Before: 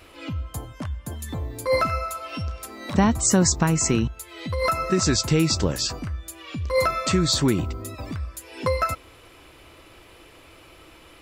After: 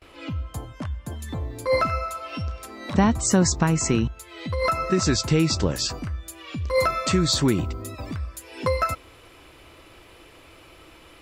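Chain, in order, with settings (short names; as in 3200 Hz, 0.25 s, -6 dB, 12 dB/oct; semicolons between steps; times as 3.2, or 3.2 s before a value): high shelf 9600 Hz -10.5 dB, from 5.75 s -2.5 dB; gate with hold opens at -43 dBFS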